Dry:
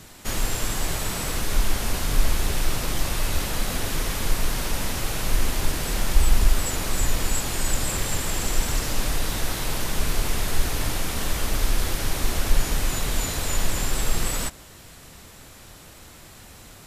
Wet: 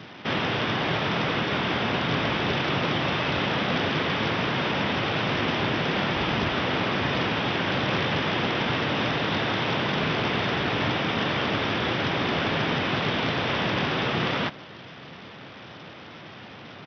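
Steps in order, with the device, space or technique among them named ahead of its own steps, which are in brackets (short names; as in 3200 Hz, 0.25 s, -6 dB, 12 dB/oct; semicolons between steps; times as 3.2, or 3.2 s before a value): Bluetooth headset (HPF 120 Hz 24 dB/oct; downsampling 8000 Hz; gain +6.5 dB; SBC 64 kbps 44100 Hz)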